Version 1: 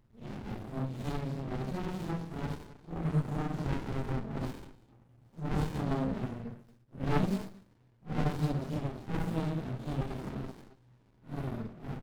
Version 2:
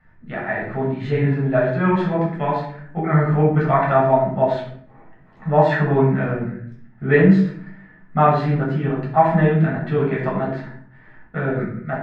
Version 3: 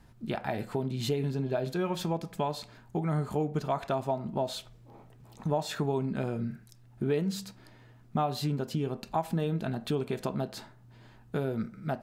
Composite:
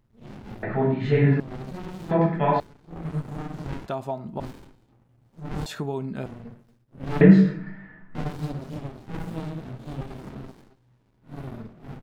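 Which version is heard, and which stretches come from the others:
1
0.63–1.40 s: from 2
2.11–2.60 s: from 2
3.86–4.40 s: from 3
5.66–6.26 s: from 3
7.21–8.15 s: from 2

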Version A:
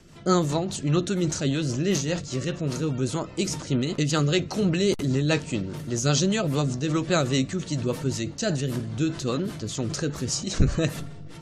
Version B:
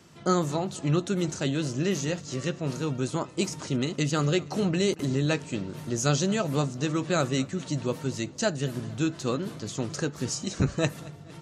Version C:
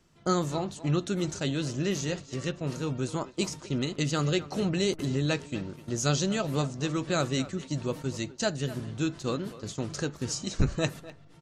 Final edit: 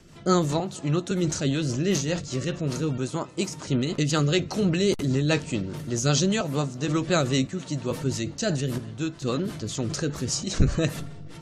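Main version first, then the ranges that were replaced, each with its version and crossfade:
A
0.60–1.11 s: from B
2.98–3.67 s: from B
6.41–6.88 s: from B
7.47–7.91 s: from B
8.78–9.22 s: from C

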